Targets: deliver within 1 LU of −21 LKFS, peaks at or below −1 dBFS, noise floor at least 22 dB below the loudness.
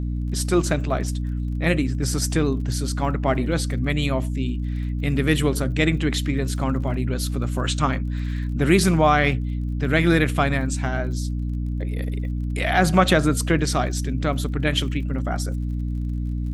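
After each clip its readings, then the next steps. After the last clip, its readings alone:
crackle rate 37 per second; mains hum 60 Hz; hum harmonics up to 300 Hz; level of the hum −23 dBFS; integrated loudness −23.0 LKFS; sample peak −2.5 dBFS; target loudness −21.0 LKFS
→ click removal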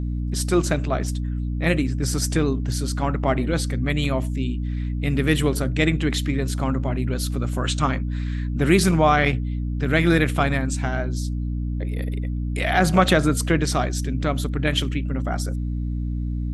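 crackle rate 0 per second; mains hum 60 Hz; hum harmonics up to 300 Hz; level of the hum −23 dBFS
→ mains-hum notches 60/120/180/240/300 Hz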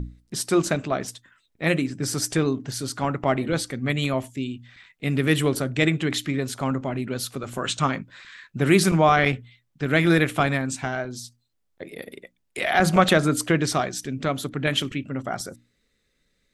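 mains hum none found; integrated loudness −24.0 LKFS; sample peak −2.5 dBFS; target loudness −21.0 LKFS
→ level +3 dB
brickwall limiter −1 dBFS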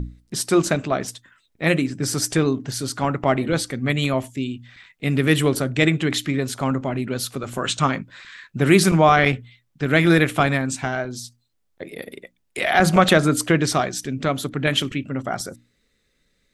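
integrated loudness −21.0 LKFS; sample peak −1.0 dBFS; background noise floor −69 dBFS

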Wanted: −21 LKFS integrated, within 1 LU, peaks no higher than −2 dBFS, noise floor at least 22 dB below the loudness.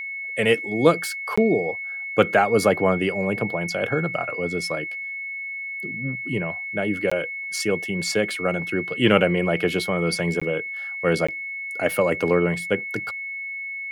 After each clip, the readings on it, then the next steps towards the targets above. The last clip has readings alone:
number of dropouts 4; longest dropout 15 ms; interfering tone 2,200 Hz; level of the tone −29 dBFS; integrated loudness −23.5 LKFS; sample peak −2.0 dBFS; target loudness −21.0 LKFS
→ repair the gap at 0:01.36/0:07.10/0:10.40/0:11.27, 15 ms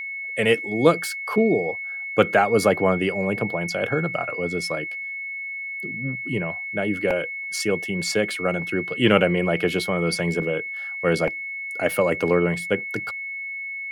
number of dropouts 0; interfering tone 2,200 Hz; level of the tone −29 dBFS
→ notch filter 2,200 Hz, Q 30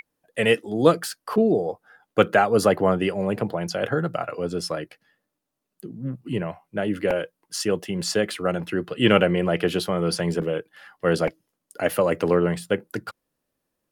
interfering tone none found; integrated loudness −23.5 LKFS; sample peak −2.0 dBFS; target loudness −21.0 LKFS
→ level +2.5 dB
brickwall limiter −2 dBFS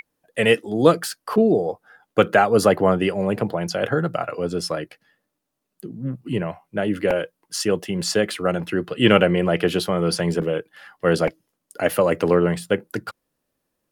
integrated loudness −21.5 LKFS; sample peak −2.0 dBFS; background noise floor −78 dBFS

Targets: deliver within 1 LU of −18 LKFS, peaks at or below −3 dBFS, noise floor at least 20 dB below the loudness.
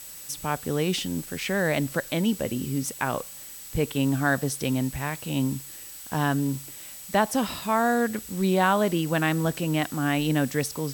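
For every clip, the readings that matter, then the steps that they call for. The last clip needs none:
interfering tone 7,900 Hz; level of the tone −46 dBFS; background noise floor −42 dBFS; target noise floor −46 dBFS; integrated loudness −26.0 LKFS; sample peak −10.0 dBFS; target loudness −18.0 LKFS
→ notch filter 7,900 Hz, Q 30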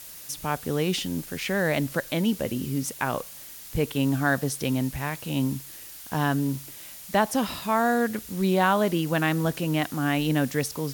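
interfering tone none found; background noise floor −43 dBFS; target noise floor −47 dBFS
→ noise reduction from a noise print 6 dB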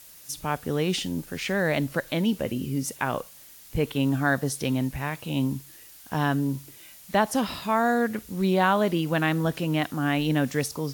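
background noise floor −49 dBFS; integrated loudness −26.5 LKFS; sample peak −10.5 dBFS; target loudness −18.0 LKFS
→ level +8.5 dB
brickwall limiter −3 dBFS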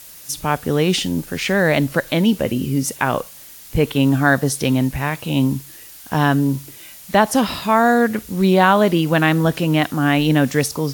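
integrated loudness −18.0 LKFS; sample peak −3.0 dBFS; background noise floor −40 dBFS

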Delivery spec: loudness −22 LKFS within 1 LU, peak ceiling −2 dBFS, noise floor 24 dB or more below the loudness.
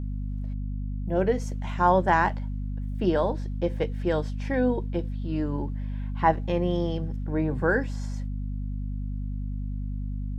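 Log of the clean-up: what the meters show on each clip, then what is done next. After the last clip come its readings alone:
mains hum 50 Hz; hum harmonics up to 250 Hz; level of the hum −28 dBFS; integrated loudness −28.0 LKFS; sample peak −7.0 dBFS; target loudness −22.0 LKFS
→ mains-hum notches 50/100/150/200/250 Hz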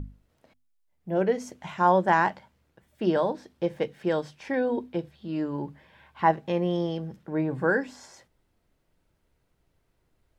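mains hum none found; integrated loudness −27.5 LKFS; sample peak −8.0 dBFS; target loudness −22.0 LKFS
→ level +5.5 dB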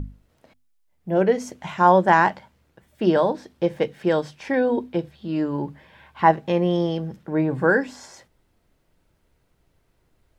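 integrated loudness −22.0 LKFS; sample peak −2.5 dBFS; background noise floor −66 dBFS

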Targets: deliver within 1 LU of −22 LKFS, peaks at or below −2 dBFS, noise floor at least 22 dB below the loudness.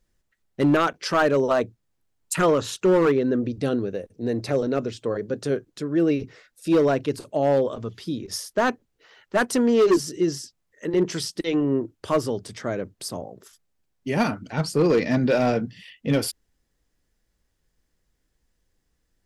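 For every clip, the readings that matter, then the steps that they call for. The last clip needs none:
share of clipped samples 0.9%; peaks flattened at −13.5 dBFS; integrated loudness −23.5 LKFS; sample peak −13.5 dBFS; target loudness −22.0 LKFS
→ clipped peaks rebuilt −13.5 dBFS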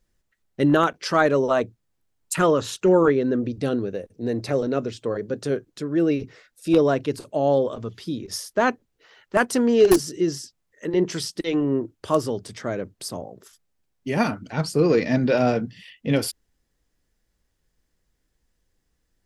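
share of clipped samples 0.0%; integrated loudness −23.0 LKFS; sample peak −4.5 dBFS; target loudness −22.0 LKFS
→ level +1 dB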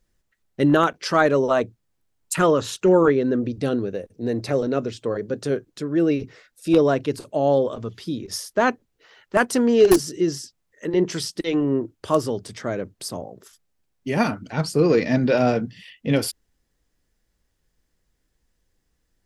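integrated loudness −22.0 LKFS; sample peak −3.5 dBFS; background noise floor −73 dBFS

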